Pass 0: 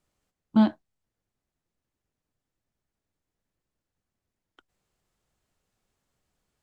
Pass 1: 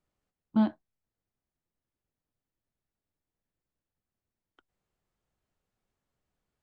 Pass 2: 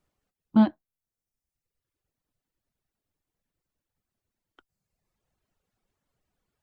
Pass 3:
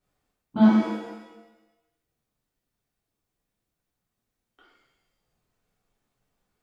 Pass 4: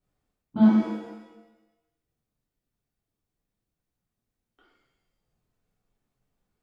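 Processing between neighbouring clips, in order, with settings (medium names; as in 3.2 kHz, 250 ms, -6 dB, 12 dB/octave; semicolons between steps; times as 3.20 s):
treble shelf 3.8 kHz -8.5 dB; trim -5 dB
reverb removal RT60 1.1 s; trim +6 dB
pitch-shifted reverb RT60 1 s, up +7 st, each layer -8 dB, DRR -9 dB; trim -6 dB
bass shelf 400 Hz +7 dB; trim -6 dB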